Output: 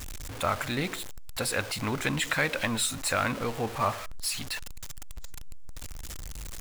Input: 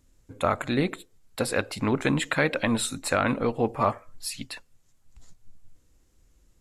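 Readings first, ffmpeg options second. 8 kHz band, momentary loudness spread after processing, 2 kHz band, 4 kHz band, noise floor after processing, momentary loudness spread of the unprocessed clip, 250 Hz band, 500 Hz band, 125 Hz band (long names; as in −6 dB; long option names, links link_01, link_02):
+3.0 dB, 18 LU, −0.5 dB, +2.0 dB, −39 dBFS, 12 LU, −7.0 dB, −6.0 dB, −3.0 dB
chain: -af "aeval=exprs='val(0)+0.5*0.0316*sgn(val(0))':channel_layout=same,equalizer=frequency=310:width_type=o:width=2.6:gain=-8.5,volume=-1dB"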